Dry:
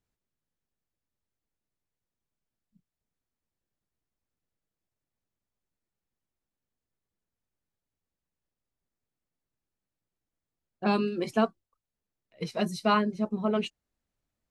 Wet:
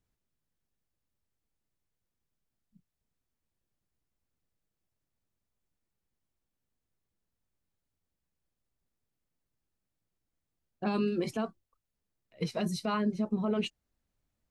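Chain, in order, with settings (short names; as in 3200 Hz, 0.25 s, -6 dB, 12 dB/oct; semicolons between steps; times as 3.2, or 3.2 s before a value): limiter -23 dBFS, peak gain reduction 11.5 dB; low shelf 190 Hz +5 dB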